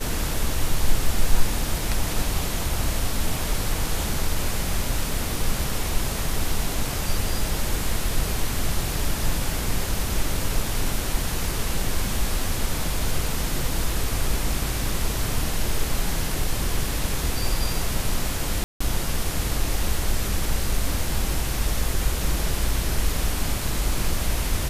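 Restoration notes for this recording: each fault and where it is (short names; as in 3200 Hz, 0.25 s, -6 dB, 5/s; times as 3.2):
18.64–18.8 gap 0.165 s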